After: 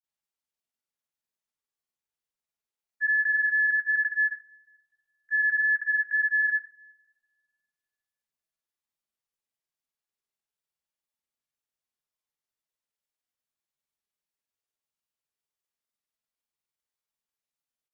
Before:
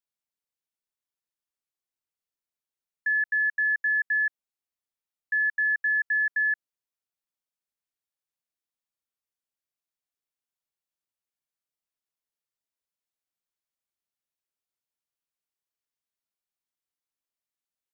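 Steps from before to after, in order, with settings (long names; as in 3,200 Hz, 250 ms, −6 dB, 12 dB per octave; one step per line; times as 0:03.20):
coupled-rooms reverb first 0.3 s, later 1.9 s, from −27 dB, DRR 5 dB
granular cloud, pitch spread up and down by 0 semitones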